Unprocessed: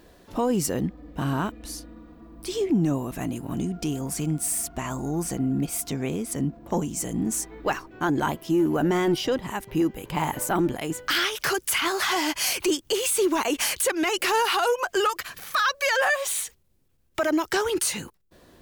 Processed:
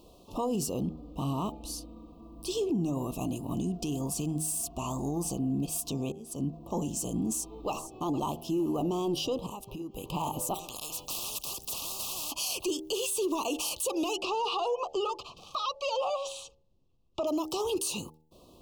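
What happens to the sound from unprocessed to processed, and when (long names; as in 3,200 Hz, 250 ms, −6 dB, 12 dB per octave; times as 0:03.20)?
0:06.12–0:06.57: fade in
0:07.28–0:07.94: delay throw 460 ms, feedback 30%, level −15 dB
0:09.46–0:09.96: downward compressor 12 to 1, threshold −33 dBFS
0:10.54–0:12.32: every bin compressed towards the loudest bin 10 to 1
0:14.16–0:17.27: high-frequency loss of the air 140 metres
whole clip: Chebyshev band-stop filter 1,200–2,600 Hz, order 4; hum removal 78.33 Hz, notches 11; brickwall limiter −21.5 dBFS; level −1.5 dB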